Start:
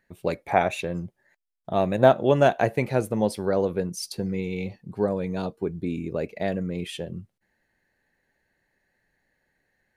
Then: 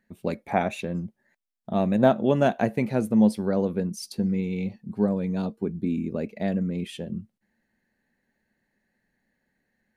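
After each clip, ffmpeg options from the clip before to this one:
ffmpeg -i in.wav -af "equalizer=frequency=220:width_type=o:width=0.55:gain=13.5,volume=-4dB" out.wav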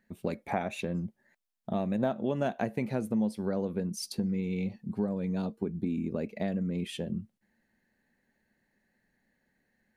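ffmpeg -i in.wav -af "acompressor=threshold=-29dB:ratio=3" out.wav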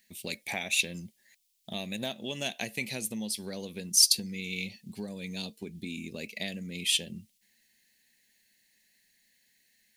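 ffmpeg -i in.wav -af "aexciter=amount=15.2:drive=4.9:freq=2100,volume=-8dB" out.wav

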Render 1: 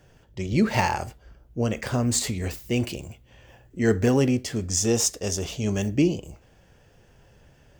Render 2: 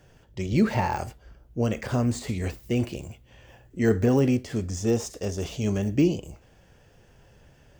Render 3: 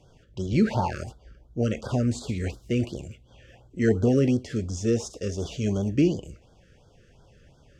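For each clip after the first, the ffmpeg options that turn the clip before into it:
ffmpeg -i in.wav -af "deesser=0.95" out.wav
ffmpeg -i in.wav -af "lowpass=7700,afftfilt=real='re*(1-between(b*sr/1024,800*pow(2300/800,0.5+0.5*sin(2*PI*2.8*pts/sr))/1.41,800*pow(2300/800,0.5+0.5*sin(2*PI*2.8*pts/sr))*1.41))':imag='im*(1-between(b*sr/1024,800*pow(2300/800,0.5+0.5*sin(2*PI*2.8*pts/sr))/1.41,800*pow(2300/800,0.5+0.5*sin(2*PI*2.8*pts/sr))*1.41))':win_size=1024:overlap=0.75" out.wav

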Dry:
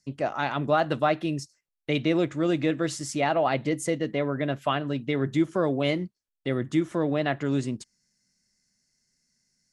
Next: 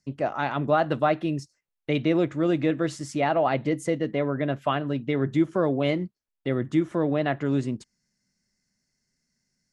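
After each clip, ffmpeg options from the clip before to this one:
ffmpeg -i in.wav -af "highshelf=frequency=3300:gain=-9,volume=1.5dB" out.wav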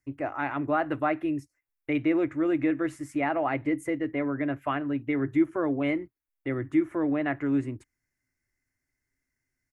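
ffmpeg -i in.wav -af "firequalizer=gain_entry='entry(110,0);entry(200,-24);entry(280,2);entry(460,-8);entry(800,-4);entry(2200,1);entry(3200,-13);entry(4500,-18);entry(12000,3)':delay=0.05:min_phase=1" out.wav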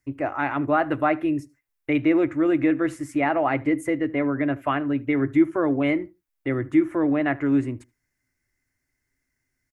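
ffmpeg -i in.wav -filter_complex "[0:a]asplit=2[link_01][link_02];[link_02]adelay=76,lowpass=frequency=1900:poles=1,volume=-21dB,asplit=2[link_03][link_04];[link_04]adelay=76,lowpass=frequency=1900:poles=1,volume=0.19[link_05];[link_01][link_03][link_05]amix=inputs=3:normalize=0,volume=5dB" out.wav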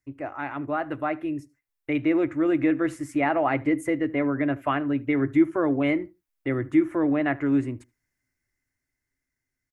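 ffmpeg -i in.wav -af "dynaudnorm=framelen=430:gausssize=9:maxgain=8dB,volume=-7dB" out.wav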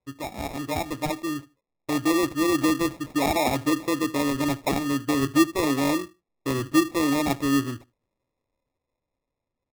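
ffmpeg -i in.wav -af "acrusher=samples=29:mix=1:aa=0.000001" out.wav

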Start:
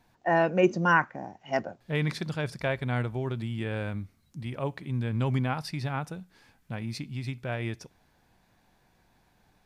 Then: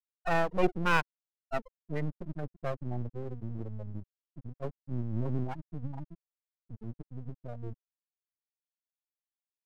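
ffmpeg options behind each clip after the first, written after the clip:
ffmpeg -i in.wav -af "afftfilt=real='re*gte(hypot(re,im),0.158)':imag='im*gte(hypot(re,im),0.158)':win_size=1024:overlap=0.75,aeval=exprs='max(val(0),0)':channel_layout=same" out.wav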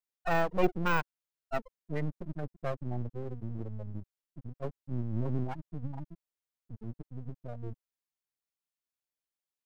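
ffmpeg -i in.wav -af "deesser=0.95" out.wav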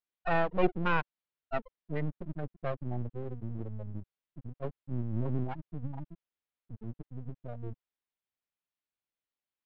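ffmpeg -i in.wav -af "lowpass=frequency=3800:width=0.5412,lowpass=frequency=3800:width=1.3066" out.wav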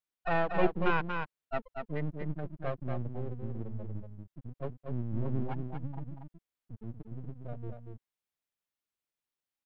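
ffmpeg -i in.wav -af "aecho=1:1:236:0.531,volume=-1dB" out.wav

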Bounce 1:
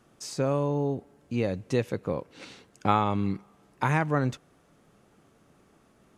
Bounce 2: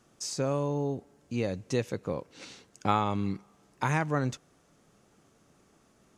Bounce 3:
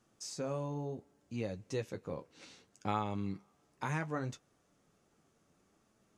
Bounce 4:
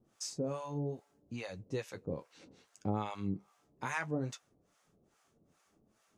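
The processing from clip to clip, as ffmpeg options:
ffmpeg -i in.wav -af "equalizer=frequency=6300:width_type=o:width=1.1:gain=7.5,volume=-3dB" out.wav
ffmpeg -i in.wav -af "flanger=delay=9.2:depth=3.7:regen=-42:speed=0.67:shape=sinusoidal,volume=-4.5dB" out.wav
ffmpeg -i in.wav -filter_complex "[0:a]acrossover=split=650[link_01][link_02];[link_01]aeval=exprs='val(0)*(1-1/2+1/2*cos(2*PI*2.4*n/s))':channel_layout=same[link_03];[link_02]aeval=exprs='val(0)*(1-1/2-1/2*cos(2*PI*2.4*n/s))':channel_layout=same[link_04];[link_03][link_04]amix=inputs=2:normalize=0,volume=5dB" out.wav

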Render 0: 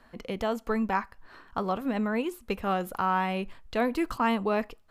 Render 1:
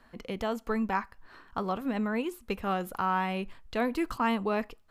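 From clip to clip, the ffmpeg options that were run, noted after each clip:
ffmpeg -i in.wav -af "equalizer=frequency=600:width_type=o:width=0.77:gain=-2,volume=-1.5dB" out.wav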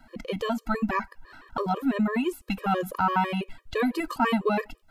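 ffmpeg -i in.wav -af "afftfilt=real='re*gt(sin(2*PI*6*pts/sr)*(1-2*mod(floor(b*sr/1024/320),2)),0)':imag='im*gt(sin(2*PI*6*pts/sr)*(1-2*mod(floor(b*sr/1024/320),2)),0)':win_size=1024:overlap=0.75,volume=7.5dB" out.wav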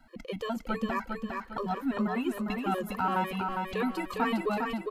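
ffmpeg -i in.wav -af "aecho=1:1:405|810|1215|1620|2025:0.631|0.271|0.117|0.0502|0.0216,volume=-5.5dB" out.wav

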